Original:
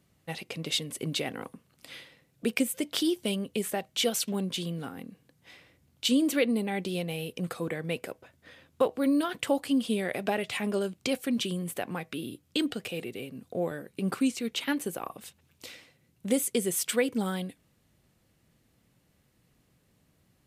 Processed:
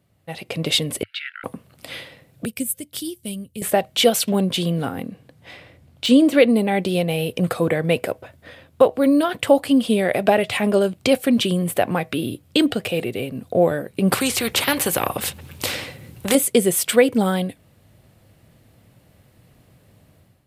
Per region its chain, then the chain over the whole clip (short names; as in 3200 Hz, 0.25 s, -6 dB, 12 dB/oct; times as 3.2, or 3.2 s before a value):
1.03–1.44 brick-wall FIR high-pass 1300 Hz + air absorption 360 m
2.45–3.62 EQ curve 100 Hz 0 dB, 710 Hz -22 dB, 3600 Hz -11 dB, 10000 Hz 0 dB + upward expander, over -49 dBFS
5.08–6.4 de-esser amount 60% + high shelf 9800 Hz -9 dB
14.11–16.35 notch 660 Hz, Q 6.3 + spectral compressor 2:1
whole clip: fifteen-band EQ 100 Hz +8 dB, 630 Hz +6 dB, 6300 Hz -5 dB; AGC gain up to 11.5 dB